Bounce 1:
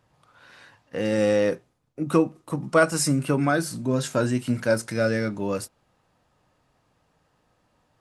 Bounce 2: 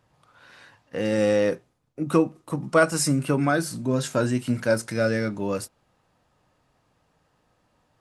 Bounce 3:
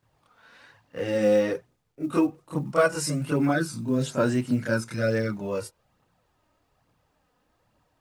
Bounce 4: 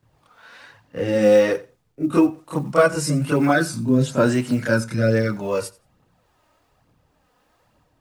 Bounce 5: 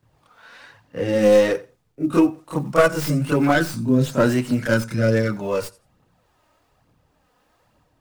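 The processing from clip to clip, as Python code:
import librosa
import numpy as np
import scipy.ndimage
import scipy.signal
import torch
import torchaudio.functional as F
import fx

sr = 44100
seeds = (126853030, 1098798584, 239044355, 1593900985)

y1 = x
y2 = fx.high_shelf(y1, sr, hz=7600.0, db=-5.0)
y2 = fx.chorus_voices(y2, sr, voices=2, hz=0.58, base_ms=27, depth_ms=2.3, mix_pct=70)
y2 = fx.quant_companded(y2, sr, bits=8)
y3 = fx.harmonic_tremolo(y2, sr, hz=1.0, depth_pct=50, crossover_hz=430.0)
y3 = fx.echo_feedback(y3, sr, ms=88, feedback_pct=15, wet_db=-21.0)
y3 = y3 * librosa.db_to_amplitude(8.5)
y4 = fx.tracing_dist(y3, sr, depth_ms=0.13)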